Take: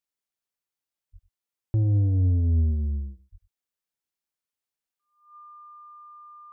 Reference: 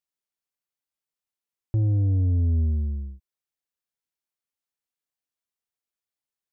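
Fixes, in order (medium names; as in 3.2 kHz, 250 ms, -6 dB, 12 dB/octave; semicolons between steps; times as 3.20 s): band-stop 1.2 kHz, Q 30; 1.12–1.24 s: high-pass 140 Hz 24 dB/octave; 2.66–2.78 s: high-pass 140 Hz 24 dB/octave; 3.31–3.43 s: high-pass 140 Hz 24 dB/octave; inverse comb 97 ms -17 dB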